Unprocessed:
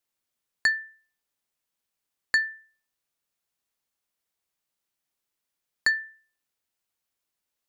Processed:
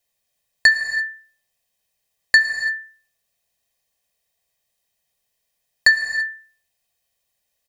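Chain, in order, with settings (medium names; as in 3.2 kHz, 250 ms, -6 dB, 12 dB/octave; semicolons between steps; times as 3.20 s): Butterworth band-stop 1.3 kHz, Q 4; comb 1.6 ms, depth 65%; gated-style reverb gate 360 ms flat, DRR 7 dB; trim +7 dB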